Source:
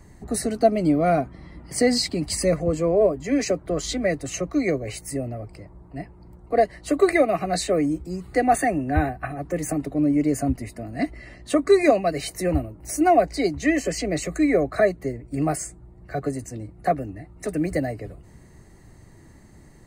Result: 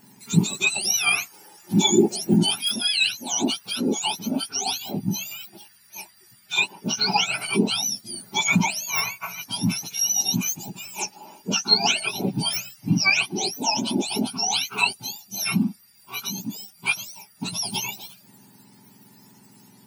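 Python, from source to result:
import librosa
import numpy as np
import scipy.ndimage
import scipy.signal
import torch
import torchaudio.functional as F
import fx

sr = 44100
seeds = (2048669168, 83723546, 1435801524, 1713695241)

y = fx.octave_mirror(x, sr, pivot_hz=1300.0)
y = y * 10.0 ** (2.5 / 20.0)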